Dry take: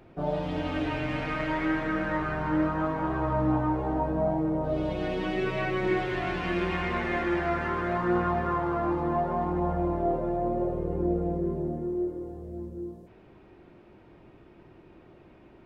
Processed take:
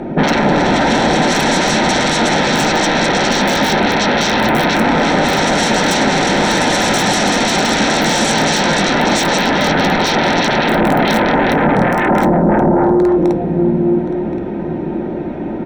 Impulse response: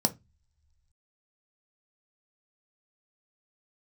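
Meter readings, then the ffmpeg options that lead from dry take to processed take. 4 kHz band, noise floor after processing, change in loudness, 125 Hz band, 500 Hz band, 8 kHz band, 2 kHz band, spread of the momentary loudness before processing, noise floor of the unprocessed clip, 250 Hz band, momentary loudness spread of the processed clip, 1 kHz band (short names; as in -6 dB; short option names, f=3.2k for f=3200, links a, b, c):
+28.5 dB, -21 dBFS, +15.5 dB, +12.5 dB, +14.5 dB, n/a, +19.5 dB, 4 LU, -54 dBFS, +15.0 dB, 3 LU, +16.5 dB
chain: -filter_complex "[0:a]aemphasis=mode=reproduction:type=75fm,aeval=exprs='(mod(7.08*val(0)+1,2)-1)/7.08':c=same,asplit=2[a][b];[b]adelay=1074,lowpass=f=4.8k:p=1,volume=-7dB,asplit=2[c][d];[d]adelay=1074,lowpass=f=4.8k:p=1,volume=0.2,asplit=2[e][f];[f]adelay=1074,lowpass=f=4.8k:p=1,volume=0.2[g];[a][c][e][g]amix=inputs=4:normalize=0,aeval=exprs='0.2*sin(PI/2*10*val(0)/0.2)':c=same,asplit=2[h][i];[1:a]atrim=start_sample=2205[j];[i][j]afir=irnorm=-1:irlink=0,volume=-7dB[k];[h][k]amix=inputs=2:normalize=0,volume=-2.5dB"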